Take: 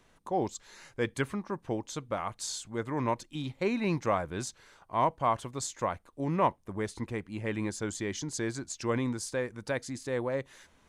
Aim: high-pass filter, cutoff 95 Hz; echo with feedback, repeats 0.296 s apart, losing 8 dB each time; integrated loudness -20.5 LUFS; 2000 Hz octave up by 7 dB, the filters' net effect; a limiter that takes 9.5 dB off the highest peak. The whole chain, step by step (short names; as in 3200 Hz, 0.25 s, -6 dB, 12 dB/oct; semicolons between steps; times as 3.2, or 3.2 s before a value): HPF 95 Hz; bell 2000 Hz +8.5 dB; limiter -21 dBFS; feedback echo 0.296 s, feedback 40%, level -8 dB; gain +13.5 dB